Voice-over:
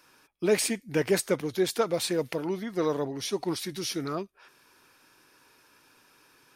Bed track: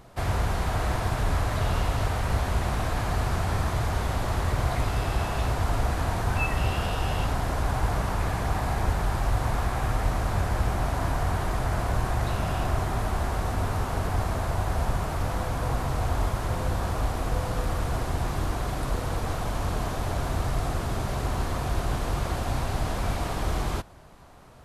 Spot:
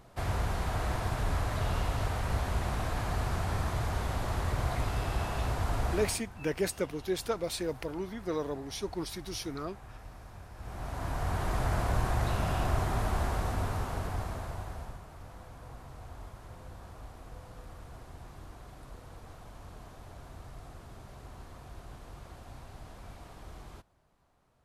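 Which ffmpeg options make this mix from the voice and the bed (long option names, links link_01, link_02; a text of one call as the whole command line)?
ffmpeg -i stem1.wav -i stem2.wav -filter_complex "[0:a]adelay=5500,volume=-6dB[link_01];[1:a]volume=14dB,afade=type=out:start_time=5.95:duration=0.27:silence=0.141254,afade=type=in:start_time=10.56:duration=1.05:silence=0.105925,afade=type=out:start_time=13.2:duration=1.82:silence=0.141254[link_02];[link_01][link_02]amix=inputs=2:normalize=0" out.wav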